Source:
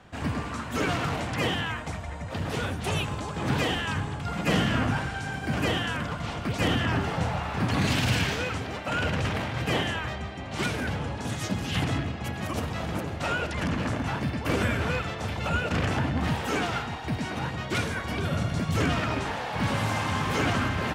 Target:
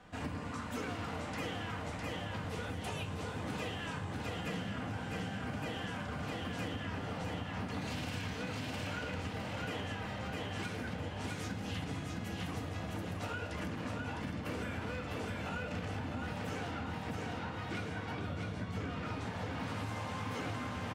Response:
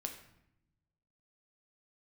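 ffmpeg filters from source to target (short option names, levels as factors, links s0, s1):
-filter_complex "[0:a]asettb=1/sr,asplit=3[s0][s1][s2];[s0]atrim=end=16.714[s3];[s1]atrim=start=16.71:end=19.06,asetpts=PTS-STARTPTS,afade=t=in:d=0.004:c=qsin,afade=t=out:st=2.346:d=0.004:c=qsin,lowpass=f=3700:p=1[s4];[s2]atrim=start=19.056[s5];[s3][s4]acrossfade=d=0.004:c1=hsin:c2=qsin[s6];[s6][s5]acrossfade=d=0.004:c1=qsin:c2=hsin,aecho=1:1:657|1314|1971|2628|3285:0.631|0.246|0.096|0.0374|0.0146[s7];[1:a]atrim=start_sample=2205,asetrate=83790,aresample=44100[s8];[s7][s8]afir=irnorm=-1:irlink=0,acompressor=threshold=0.0112:ratio=6,volume=1.33"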